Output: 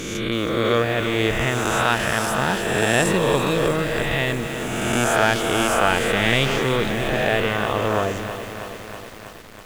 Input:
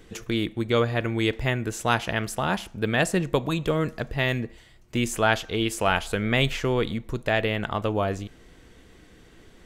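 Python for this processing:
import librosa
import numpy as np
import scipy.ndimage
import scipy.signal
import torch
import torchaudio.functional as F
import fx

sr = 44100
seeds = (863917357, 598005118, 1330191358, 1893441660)

y = fx.spec_swells(x, sr, rise_s=1.97)
y = fx.echo_crushed(y, sr, ms=323, feedback_pct=80, bits=6, wet_db=-10)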